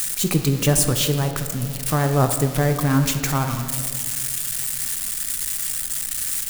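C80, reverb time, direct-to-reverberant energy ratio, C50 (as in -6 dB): 9.0 dB, 2.2 s, 6.0 dB, 8.0 dB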